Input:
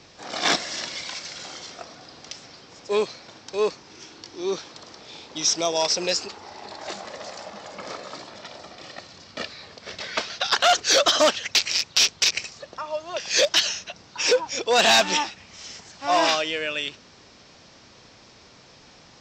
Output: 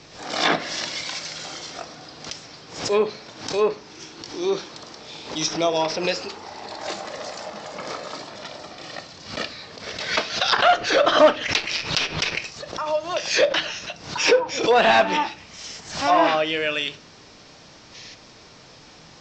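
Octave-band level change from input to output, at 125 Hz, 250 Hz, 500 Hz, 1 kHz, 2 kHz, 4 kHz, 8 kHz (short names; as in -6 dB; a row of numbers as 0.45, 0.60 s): +7.5, +5.0, +4.0, +4.0, +2.5, -2.5, -6.5 dB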